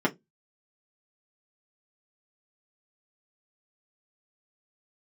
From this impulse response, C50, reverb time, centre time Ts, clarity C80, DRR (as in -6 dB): 23.5 dB, 0.15 s, 10 ms, 33.5 dB, -3.5 dB